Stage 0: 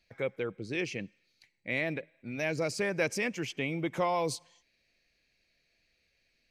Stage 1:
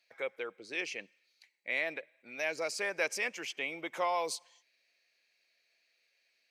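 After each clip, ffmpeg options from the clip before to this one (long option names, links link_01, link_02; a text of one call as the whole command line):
ffmpeg -i in.wav -af "highpass=600" out.wav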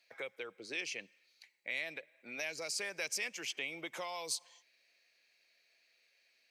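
ffmpeg -i in.wav -filter_complex "[0:a]acrossover=split=150|3000[link_01][link_02][link_03];[link_02]acompressor=threshold=-46dB:ratio=4[link_04];[link_01][link_04][link_03]amix=inputs=3:normalize=0,volume=2.5dB" out.wav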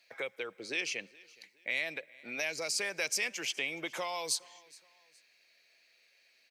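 ffmpeg -i in.wav -af "aecho=1:1:418|836:0.0668|0.0234,volume=5dB" out.wav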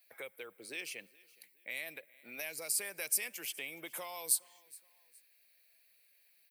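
ffmpeg -i in.wav -af "aexciter=amount=14:drive=4.6:freq=9000,volume=-8dB" out.wav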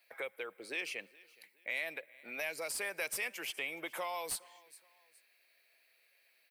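ffmpeg -i in.wav -filter_complex "[0:a]asplit=2[link_01][link_02];[link_02]highpass=frequency=720:poles=1,volume=15dB,asoftclip=type=tanh:threshold=-14dB[link_03];[link_01][link_03]amix=inputs=2:normalize=0,lowpass=frequency=1500:poles=1,volume=-6dB" out.wav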